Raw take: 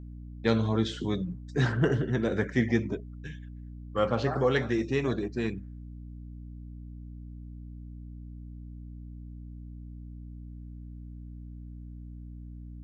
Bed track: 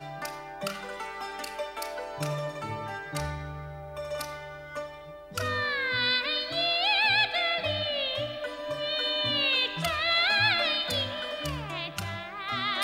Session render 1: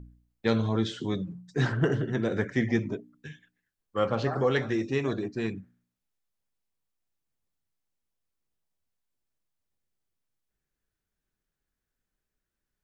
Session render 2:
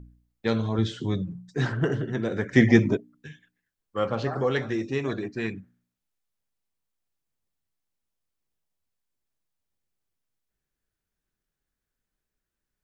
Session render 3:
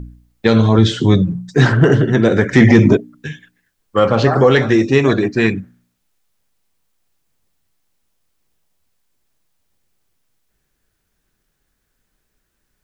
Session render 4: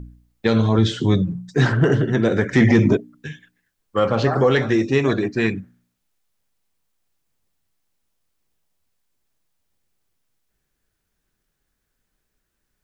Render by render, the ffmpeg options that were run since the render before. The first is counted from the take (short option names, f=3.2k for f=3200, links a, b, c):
-af "bandreject=f=60:t=h:w=4,bandreject=f=120:t=h:w=4,bandreject=f=180:t=h:w=4,bandreject=f=240:t=h:w=4,bandreject=f=300:t=h:w=4"
-filter_complex "[0:a]asettb=1/sr,asplit=3[a][b][c];[a]atrim=end=0.784[d];[b]atrim=start=0.78:end=1.49,asetpts=PTS-STARTPTS,afade=t=in:d=0.004:c=qsin,afade=t=out:st=0.706:d=0.004:c=qsin,equalizer=f=91:t=o:w=1.5:g=8[e];[c]atrim=start=1.486[f];[d][e]acrossfade=d=0.004:c1=hsin:c2=qsin[g];[g][f]acrossfade=d=0.004:c1=qsin:c2=hsin,asettb=1/sr,asplit=3[h][i][j];[h]atrim=end=5.094[k];[i]atrim=start=5.09:end=5.6,asetpts=PTS-STARTPTS,afade=t=in:d=0.004:c=qsin,afade=t=out:st=0.506:d=0.004:c=qsin,equalizer=f=2k:t=o:w=1:g=6.5[l];[j]atrim=start=5.596[m];[k][l]acrossfade=d=0.004:c1=hsin:c2=qsin[n];[n][m]acrossfade=d=0.004:c1=qsin:c2=hsin,asplit=3[o][p][q];[o]atrim=end=2.532[r];[p]atrim=start=2.528:end=2.972,asetpts=PTS-STARTPTS,volume=9dB[s];[q]atrim=start=2.968[t];[r][s]acrossfade=d=0.004:c1=hsin:c2=hsin[u];[u][t]acrossfade=d=0.004:c1=hsin:c2=hsin"
-af "acontrast=88,alimiter=level_in=8.5dB:limit=-1dB:release=50:level=0:latency=1"
-af "volume=-5.5dB"